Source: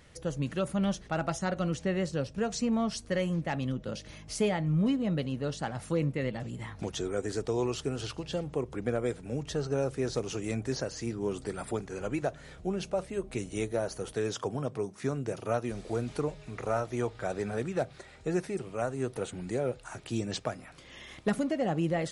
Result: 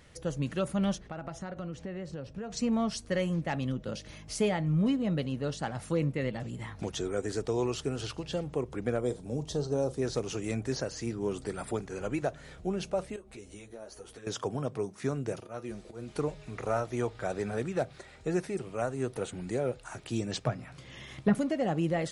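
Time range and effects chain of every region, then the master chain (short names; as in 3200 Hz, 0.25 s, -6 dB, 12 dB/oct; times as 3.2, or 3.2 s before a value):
0.98–2.57 high shelf 4300 Hz -12 dB + compressor, threshold -35 dBFS
9.01–10.02 band shelf 1900 Hz -10 dB 1.3 oct + doubler 40 ms -14 dB
13.16–14.27 bell 160 Hz -8 dB 0.75 oct + compressor 2.5:1, threshold -43 dBFS + ensemble effect
15.4–16.16 auto swell 0.124 s + resonator 71 Hz, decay 0.16 s, harmonics odd, mix 70%
20.43–21.35 treble ducked by the level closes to 2300 Hz, closed at -26.5 dBFS + bell 130 Hz +11 dB 0.95 oct + doubler 15 ms -13 dB
whole clip: dry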